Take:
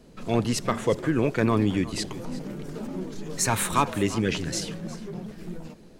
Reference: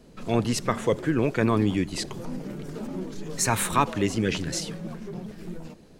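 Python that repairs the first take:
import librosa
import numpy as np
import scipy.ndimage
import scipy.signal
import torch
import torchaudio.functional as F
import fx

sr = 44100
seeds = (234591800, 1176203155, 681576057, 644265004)

y = fx.fix_declip(x, sr, threshold_db=-11.5)
y = fx.fix_echo_inverse(y, sr, delay_ms=358, level_db=-17.0)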